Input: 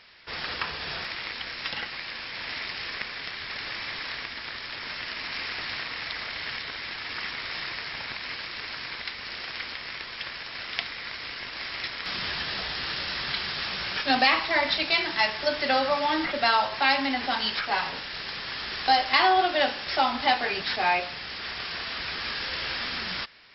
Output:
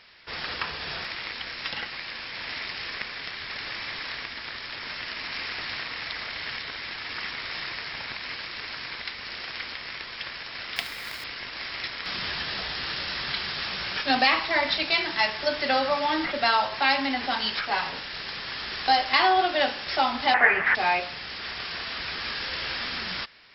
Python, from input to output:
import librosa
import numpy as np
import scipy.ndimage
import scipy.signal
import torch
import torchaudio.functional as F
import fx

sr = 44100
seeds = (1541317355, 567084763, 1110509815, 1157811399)

y = fx.quant_companded(x, sr, bits=4, at=(10.76, 11.24))
y = fx.curve_eq(y, sr, hz=(270.0, 2000.0, 3900.0), db=(0, 14, -18), at=(20.34, 20.75))